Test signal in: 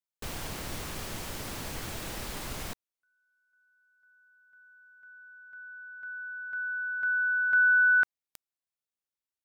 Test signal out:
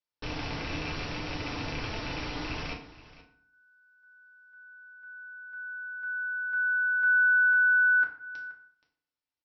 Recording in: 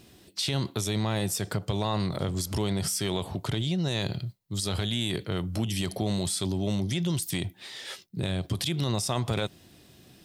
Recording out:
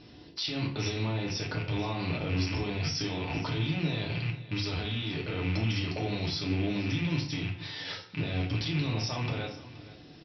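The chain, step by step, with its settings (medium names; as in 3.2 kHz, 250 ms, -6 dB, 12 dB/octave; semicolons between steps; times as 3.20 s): rattle on loud lows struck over -39 dBFS, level -26 dBFS; Chebyshev low-pass 5.7 kHz, order 10; peak limiter -26 dBFS; on a send: delay 475 ms -17.5 dB; on the sum: FDN reverb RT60 0.56 s, low-frequency decay 1.2×, high-frequency decay 0.7×, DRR -1 dB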